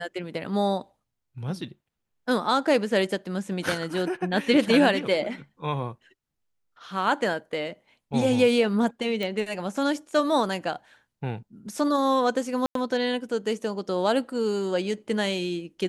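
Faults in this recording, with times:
9.23 s: pop
12.66–12.75 s: dropout 93 ms

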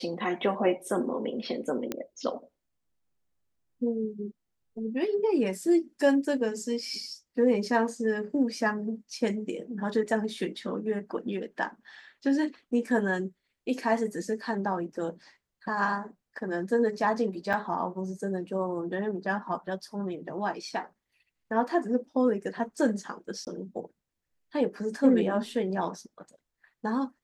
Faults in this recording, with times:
1.92 s: pop -16 dBFS
17.53–17.54 s: dropout 6.5 ms
23.45–23.47 s: dropout 18 ms

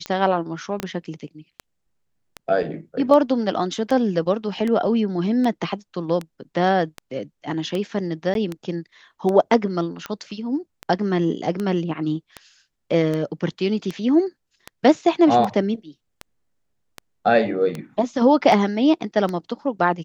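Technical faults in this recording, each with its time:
tick 78 rpm -14 dBFS
0.80 s: pop -11 dBFS
8.34–8.35 s: dropout 12 ms

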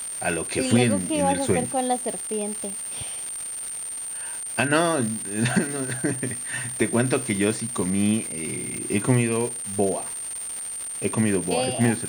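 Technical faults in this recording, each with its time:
crackle 380 per s -28 dBFS
whine 8.9 kHz -30 dBFS

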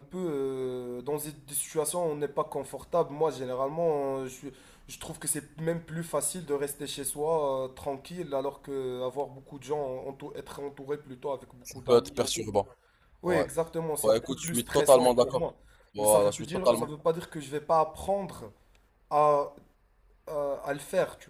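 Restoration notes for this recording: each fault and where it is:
14.48 s: pop

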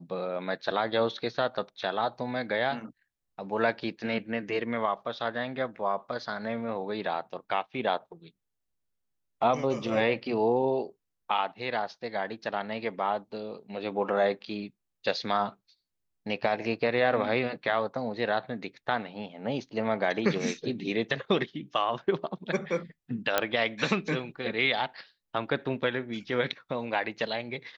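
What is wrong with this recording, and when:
23.38 s: pop -8 dBFS

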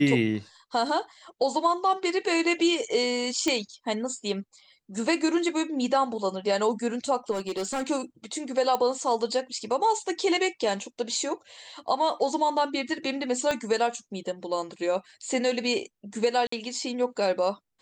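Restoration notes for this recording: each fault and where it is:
3.48 s: pop -12 dBFS
7.31–7.90 s: clipped -25.5 dBFS
8.75 s: pop -13 dBFS
13.51 s: pop -13 dBFS
16.47–16.52 s: dropout 54 ms

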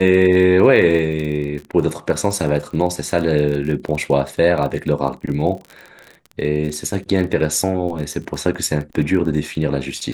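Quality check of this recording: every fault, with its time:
crackle 33 per s -26 dBFS

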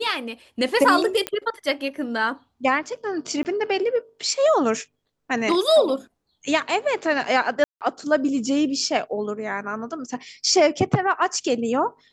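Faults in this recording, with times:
1.27 s: pop -9 dBFS
3.43–3.45 s: dropout 19 ms
7.64–7.81 s: dropout 168 ms

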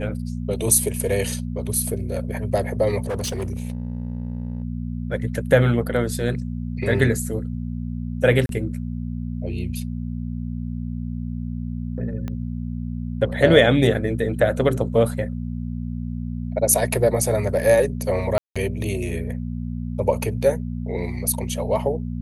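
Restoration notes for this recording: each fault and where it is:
hum 60 Hz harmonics 4 -28 dBFS
3.06–4.64 s: clipped -22.5 dBFS
8.46–8.49 s: dropout 32 ms
12.28 s: pop -18 dBFS
18.38–18.56 s: dropout 176 ms

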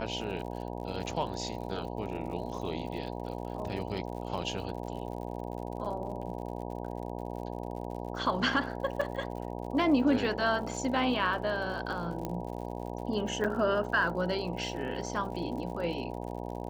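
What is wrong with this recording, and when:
buzz 60 Hz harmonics 16 -38 dBFS
crackle 77 per s -41 dBFS
9.01–9.02 s: dropout 5.3 ms
12.25 s: pop -20 dBFS
13.44–13.45 s: dropout 6.8 ms

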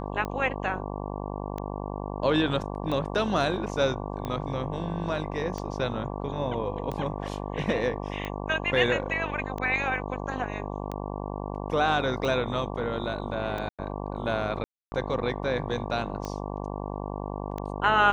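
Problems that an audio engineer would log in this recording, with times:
buzz 50 Hz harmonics 23 -34 dBFS
tick 45 rpm -20 dBFS
13.69–13.79 s: dropout 96 ms
14.64–14.92 s: dropout 280 ms

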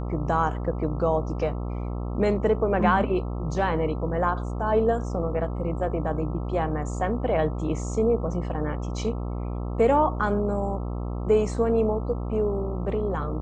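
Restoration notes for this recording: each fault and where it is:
buzz 60 Hz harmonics 22 -30 dBFS

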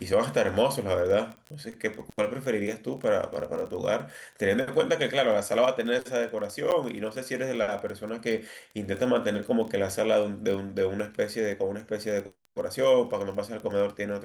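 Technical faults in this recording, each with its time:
crackle 17 per s -32 dBFS
6.71–6.72 s: dropout 9.1 ms

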